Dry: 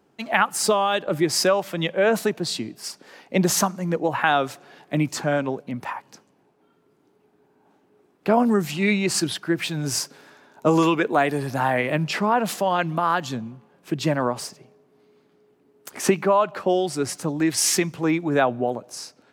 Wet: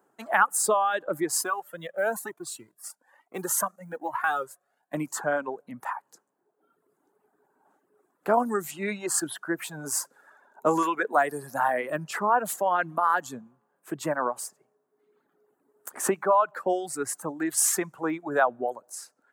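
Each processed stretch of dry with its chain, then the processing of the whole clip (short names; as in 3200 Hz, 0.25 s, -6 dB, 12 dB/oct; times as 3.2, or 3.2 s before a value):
1.41–4.94 G.711 law mismatch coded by A + bell 11000 Hz +5 dB 0.83 oct + cascading flanger rising 1.1 Hz
whole clip: reverb removal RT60 1.1 s; HPF 870 Hz 6 dB/oct; band shelf 3500 Hz -14 dB; gain +2 dB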